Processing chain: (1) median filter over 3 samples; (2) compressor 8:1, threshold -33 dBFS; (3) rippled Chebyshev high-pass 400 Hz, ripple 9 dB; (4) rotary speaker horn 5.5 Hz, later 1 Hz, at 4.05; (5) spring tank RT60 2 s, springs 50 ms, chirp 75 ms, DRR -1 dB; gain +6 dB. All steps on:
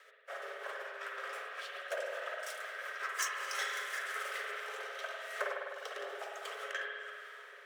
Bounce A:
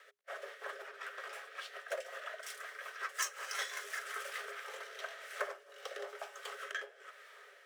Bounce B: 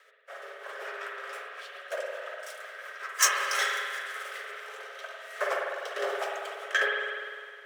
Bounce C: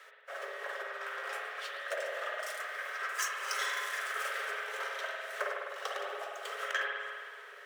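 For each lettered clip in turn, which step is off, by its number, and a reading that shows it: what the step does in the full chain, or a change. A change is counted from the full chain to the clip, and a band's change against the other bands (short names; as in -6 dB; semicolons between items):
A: 5, 8 kHz band +3.5 dB; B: 2, mean gain reduction 3.5 dB; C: 4, crest factor change -2.0 dB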